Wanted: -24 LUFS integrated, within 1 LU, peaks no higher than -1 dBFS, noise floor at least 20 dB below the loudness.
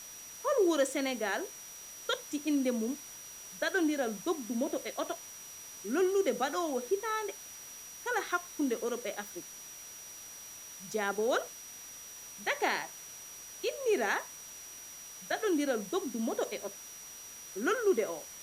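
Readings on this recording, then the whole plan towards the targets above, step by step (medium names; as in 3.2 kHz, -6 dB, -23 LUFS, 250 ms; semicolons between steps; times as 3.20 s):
steady tone 5.8 kHz; tone level -47 dBFS; noise floor -48 dBFS; noise floor target -54 dBFS; loudness -33.5 LUFS; peak level -15.0 dBFS; loudness target -24.0 LUFS
-> band-stop 5.8 kHz, Q 30; noise reduction 6 dB, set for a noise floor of -48 dBFS; trim +9.5 dB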